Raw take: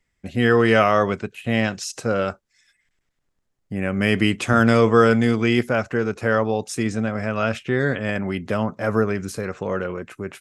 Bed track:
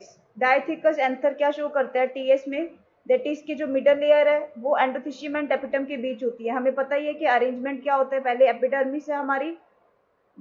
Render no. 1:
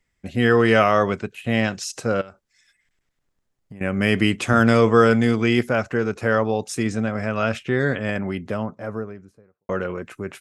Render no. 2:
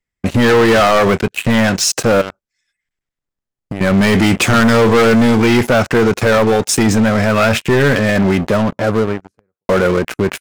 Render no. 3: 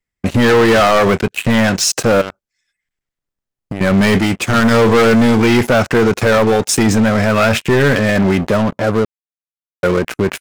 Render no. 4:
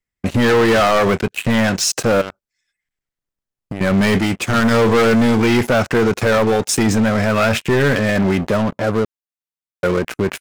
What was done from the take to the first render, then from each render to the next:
2.21–3.81 s: compression 16:1, threshold -35 dBFS; 7.92–9.69 s: studio fade out
waveshaping leveller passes 5; peak limiter -7 dBFS, peak gain reduction 4.5 dB
4.18–4.71 s: upward expansion 2.5:1, over -23 dBFS; 9.05–9.83 s: mute
trim -3 dB

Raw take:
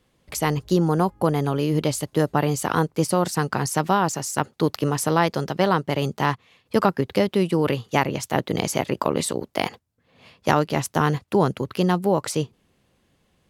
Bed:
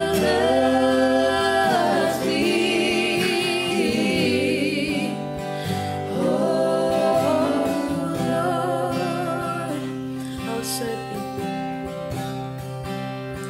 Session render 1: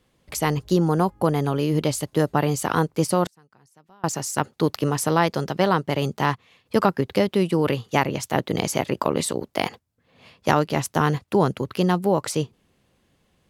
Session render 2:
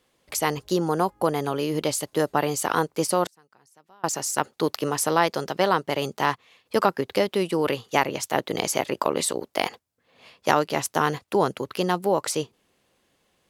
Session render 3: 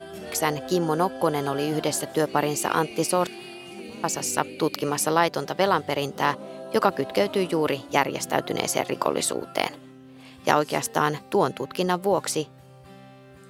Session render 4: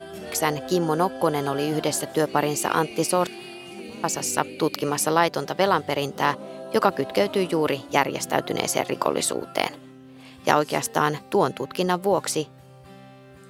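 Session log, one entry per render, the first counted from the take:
3.24–4.04 s: inverted gate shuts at -20 dBFS, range -33 dB
tone controls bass -11 dB, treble +2 dB
add bed -18 dB
trim +1 dB

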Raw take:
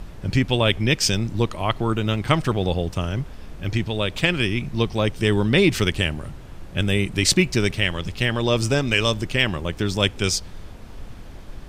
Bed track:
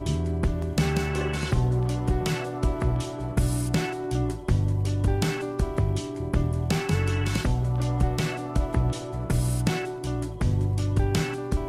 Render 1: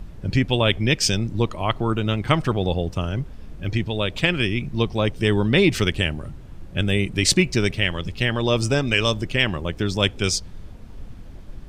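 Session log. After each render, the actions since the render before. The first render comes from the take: noise reduction 7 dB, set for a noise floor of -39 dBFS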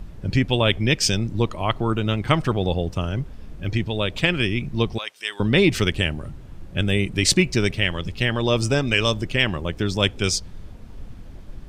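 4.98–5.40 s: Bessel high-pass 1.8 kHz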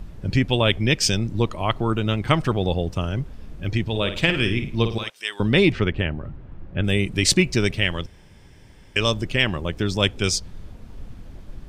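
3.82–5.10 s: flutter echo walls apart 9.2 m, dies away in 0.37 s; 5.72–6.84 s: low-pass 2.1 kHz; 8.06–8.96 s: room tone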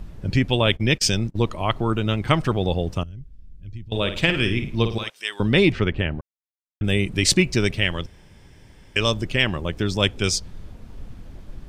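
0.66–1.38 s: gate -28 dBFS, range -29 dB; 3.03–3.92 s: amplifier tone stack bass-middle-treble 10-0-1; 6.21–6.81 s: mute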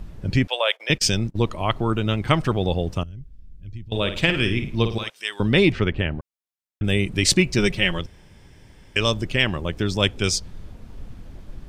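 0.47–0.90 s: elliptic high-pass 530 Hz, stop band 80 dB; 7.58–7.99 s: comb 5.5 ms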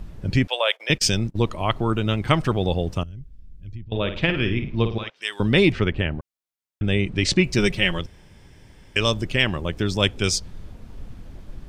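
3.75–5.22 s: distance through air 210 m; 6.84–7.44 s: distance through air 98 m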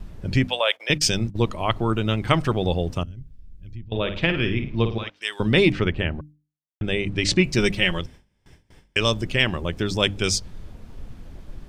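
gate with hold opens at -37 dBFS; hum notches 50/100/150/200/250/300 Hz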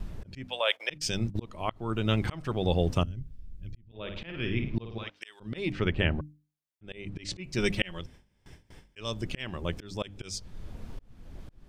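slow attack 595 ms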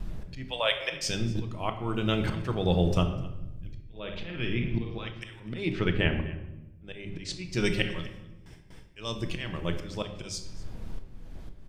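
delay 251 ms -20.5 dB; simulated room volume 420 m³, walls mixed, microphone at 0.64 m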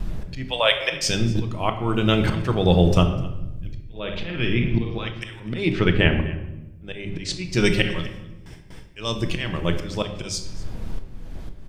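trim +8 dB; peak limiter -2 dBFS, peak gain reduction 2 dB

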